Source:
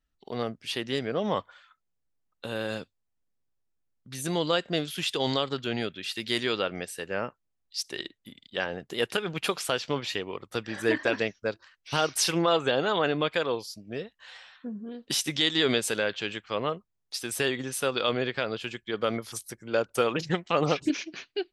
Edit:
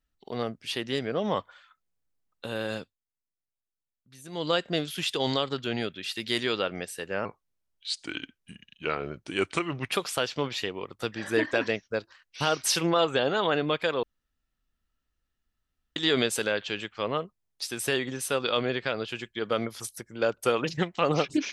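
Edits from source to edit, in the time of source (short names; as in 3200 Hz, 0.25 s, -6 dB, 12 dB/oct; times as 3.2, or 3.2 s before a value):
2.79–4.5 dip -13.5 dB, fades 0.19 s
7.25–9.44 speed 82%
13.55–15.48 room tone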